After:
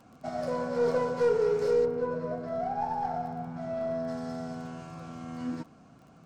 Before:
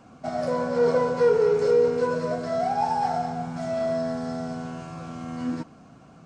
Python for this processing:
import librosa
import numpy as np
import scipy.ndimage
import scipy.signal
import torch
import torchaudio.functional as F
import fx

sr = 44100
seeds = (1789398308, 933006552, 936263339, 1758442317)

y = fx.tracing_dist(x, sr, depth_ms=0.042)
y = fx.lowpass(y, sr, hz=fx.line((1.84, 1000.0), (4.07, 1800.0)), slope=6, at=(1.84, 4.07), fade=0.02)
y = fx.dmg_crackle(y, sr, seeds[0], per_s=14.0, level_db=-41.0)
y = F.gain(torch.from_numpy(y), -5.5).numpy()